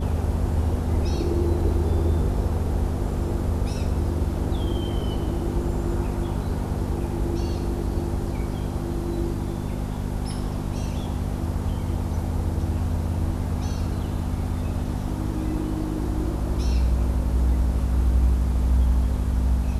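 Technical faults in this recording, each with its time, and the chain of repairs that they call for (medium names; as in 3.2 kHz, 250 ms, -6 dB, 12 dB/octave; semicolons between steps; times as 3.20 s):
hum 50 Hz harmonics 5 -29 dBFS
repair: de-hum 50 Hz, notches 5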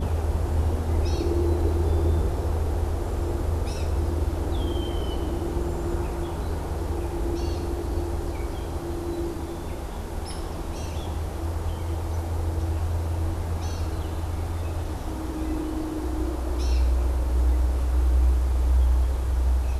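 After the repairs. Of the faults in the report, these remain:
nothing left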